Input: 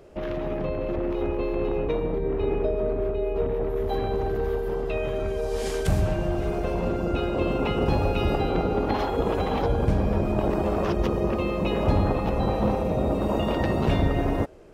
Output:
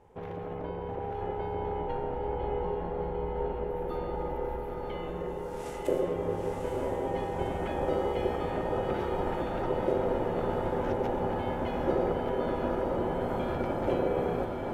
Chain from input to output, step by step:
low-shelf EQ 79 Hz +6 dB
ring modulation 450 Hz
parametric band 4,500 Hz −8 dB 0.9 octaves
notch filter 1,100 Hz, Q 6.1
on a send: feedback delay with all-pass diffusion 922 ms, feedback 65%, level −3.5 dB
on the sum: level −7 dB

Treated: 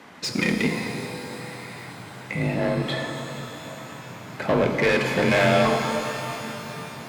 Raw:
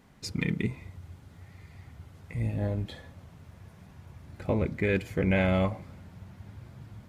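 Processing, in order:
mid-hump overdrive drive 25 dB, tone 3,000 Hz, clips at −12 dBFS
frequency shifter +34 Hz
reverb with rising layers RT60 3.4 s, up +12 semitones, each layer −8 dB, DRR 4 dB

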